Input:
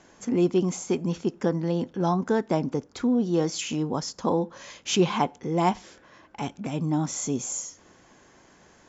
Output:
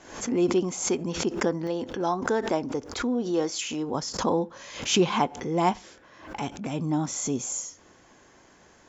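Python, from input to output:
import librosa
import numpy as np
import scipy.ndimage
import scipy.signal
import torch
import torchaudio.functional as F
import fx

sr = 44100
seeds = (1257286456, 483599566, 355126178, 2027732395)

y = fx.peak_eq(x, sr, hz=170.0, db=fx.steps((0.0, -6.5), (1.67, -12.5), (3.95, -3.0)), octaves=0.78)
y = fx.pre_swell(y, sr, db_per_s=92.0)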